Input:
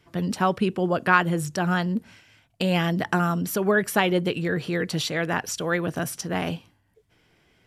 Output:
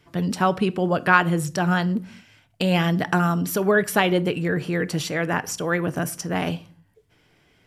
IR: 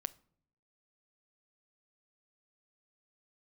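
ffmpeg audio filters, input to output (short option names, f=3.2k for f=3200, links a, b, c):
-filter_complex "[0:a]asettb=1/sr,asplit=3[a][b][c];[a]atrim=end=4.184[d];[b]atrim=start=4.18:end=6.36,asetpts=PTS-STARTPTS,afade=t=in:d=0.004:c=qsin,afade=t=out:st=2.176:d=0.004:c=qsin,equalizer=f=3.8k:w=2.3:g=-7.5[e];[c]atrim=start=6.356[f];[d][e]acrossfade=d=0.004:c1=hsin:c2=qsin[g];[g][f]acrossfade=d=0.004:c1=qsin:c2=hsin[h];[1:a]atrim=start_sample=2205,afade=t=out:st=0.33:d=0.01,atrim=end_sample=14994[i];[h][i]afir=irnorm=-1:irlink=0,volume=3.5dB"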